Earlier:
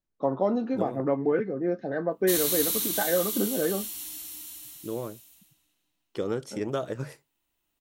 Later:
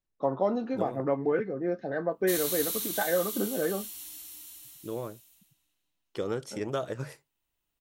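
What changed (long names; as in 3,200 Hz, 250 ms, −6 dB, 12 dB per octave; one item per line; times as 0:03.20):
background −5.0 dB
master: add parametric band 250 Hz −4 dB 1.7 octaves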